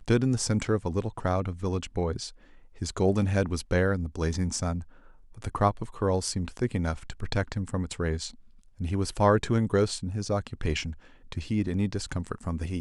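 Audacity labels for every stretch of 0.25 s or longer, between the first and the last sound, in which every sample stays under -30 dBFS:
2.270000	2.820000	silence
4.800000	5.420000	silence
8.280000	8.800000	silence
10.900000	11.320000	silence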